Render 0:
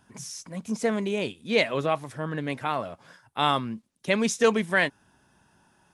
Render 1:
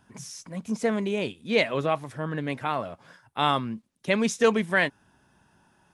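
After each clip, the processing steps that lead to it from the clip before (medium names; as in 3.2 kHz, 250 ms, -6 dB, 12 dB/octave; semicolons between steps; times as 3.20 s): tone controls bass +1 dB, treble -3 dB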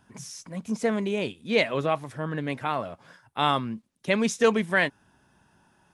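no audible change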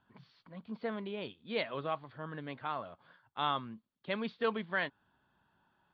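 rippled Chebyshev low-pass 4.6 kHz, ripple 6 dB; trim -7.5 dB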